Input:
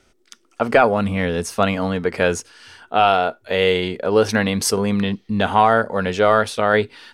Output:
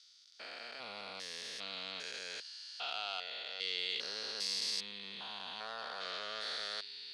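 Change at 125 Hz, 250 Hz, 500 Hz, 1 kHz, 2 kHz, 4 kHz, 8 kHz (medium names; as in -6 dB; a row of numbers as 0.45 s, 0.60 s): under -40 dB, -38.0 dB, -32.5 dB, -28.5 dB, -21.0 dB, -8.0 dB, -18.0 dB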